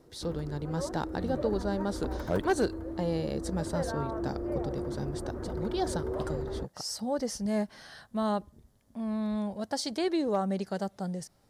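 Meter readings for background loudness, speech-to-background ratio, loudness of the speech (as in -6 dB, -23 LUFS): -37.0 LUFS, 3.5 dB, -33.5 LUFS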